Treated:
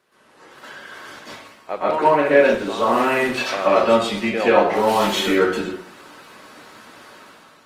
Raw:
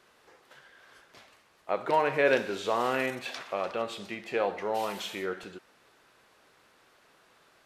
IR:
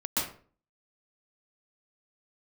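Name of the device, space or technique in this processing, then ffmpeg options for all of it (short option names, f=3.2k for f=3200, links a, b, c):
far-field microphone of a smart speaker: -filter_complex "[1:a]atrim=start_sample=2205[a];[0:a][a]afir=irnorm=-1:irlink=0,highpass=92,dynaudnorm=f=170:g=7:m=11dB" -ar 48000 -c:a libopus -b:a 24k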